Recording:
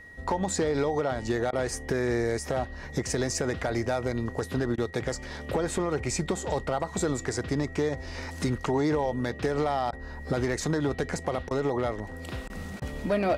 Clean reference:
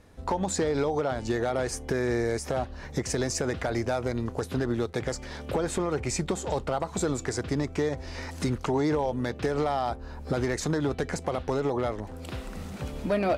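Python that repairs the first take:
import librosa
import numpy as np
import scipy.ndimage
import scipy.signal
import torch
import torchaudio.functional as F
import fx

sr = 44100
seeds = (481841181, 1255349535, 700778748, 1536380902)

y = fx.notch(x, sr, hz=1900.0, q=30.0)
y = fx.fix_interpolate(y, sr, at_s=(1.51, 4.76, 9.91, 11.49, 12.48, 12.8), length_ms=17.0)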